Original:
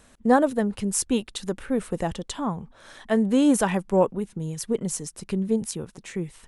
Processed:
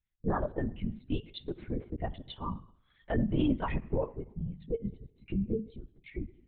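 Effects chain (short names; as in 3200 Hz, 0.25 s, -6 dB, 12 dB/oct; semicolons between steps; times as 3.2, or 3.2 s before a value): per-bin expansion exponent 2; dynamic EQ 1100 Hz, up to +5 dB, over -43 dBFS, Q 2.1; in parallel at -3 dB: compressor, threshold -34 dBFS, peak gain reduction 18.5 dB; on the sum: limiter -17 dBFS, peak gain reduction 10.5 dB; on a send at -15 dB: reverb RT60 0.85 s, pre-delay 23 ms; on the sum: LPC vocoder at 8 kHz whisper; gain -5 dB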